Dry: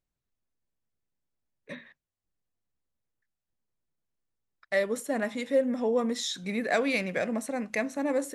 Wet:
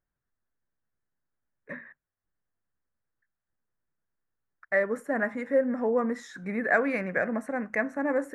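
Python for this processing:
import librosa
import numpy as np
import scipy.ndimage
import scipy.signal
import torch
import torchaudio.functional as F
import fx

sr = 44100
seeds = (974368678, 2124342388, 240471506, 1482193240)

y = fx.high_shelf_res(x, sr, hz=2400.0, db=-13.0, q=3.0)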